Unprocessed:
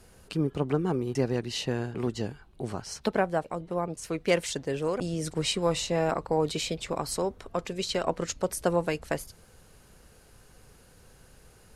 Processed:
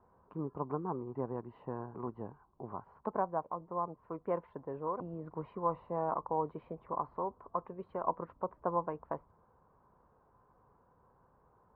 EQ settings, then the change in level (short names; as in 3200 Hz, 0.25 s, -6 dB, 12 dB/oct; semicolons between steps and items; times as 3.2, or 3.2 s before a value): HPF 95 Hz 6 dB/oct; ladder low-pass 1100 Hz, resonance 75%; air absorption 190 m; +1.0 dB